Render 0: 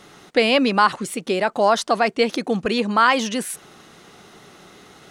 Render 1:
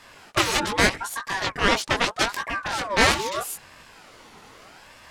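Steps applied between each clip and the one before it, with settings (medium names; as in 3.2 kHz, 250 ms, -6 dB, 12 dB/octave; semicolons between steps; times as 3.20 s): Chebyshev shaper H 7 -10 dB, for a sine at -2.5 dBFS; chorus 2.8 Hz, delay 16.5 ms, depth 6.6 ms; ring modulator with a swept carrier 1 kHz, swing 40%, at 0.8 Hz; trim +2.5 dB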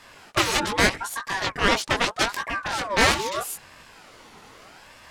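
hard clipper -7 dBFS, distortion -22 dB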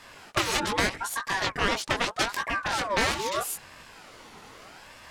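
compression 3:1, threshold -22 dBFS, peak gain reduction 7.5 dB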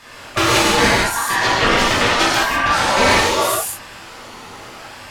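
gated-style reverb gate 230 ms flat, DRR -7 dB; trim +4.5 dB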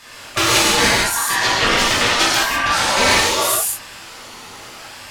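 treble shelf 2.5 kHz +8.5 dB; trim -3.5 dB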